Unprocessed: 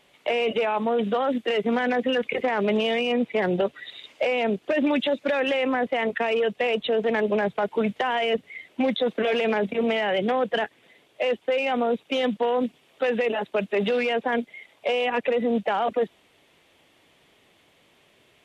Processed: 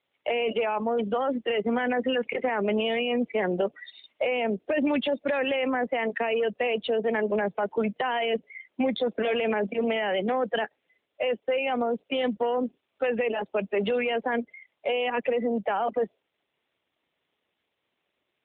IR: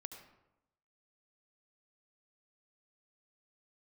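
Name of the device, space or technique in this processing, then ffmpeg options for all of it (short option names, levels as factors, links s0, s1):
mobile call with aggressive noise cancelling: -af "highpass=f=170:w=0.5412,highpass=f=170:w=1.3066,afftdn=nr=15:nf=-39,volume=0.794" -ar 8000 -c:a libopencore_amrnb -b:a 12200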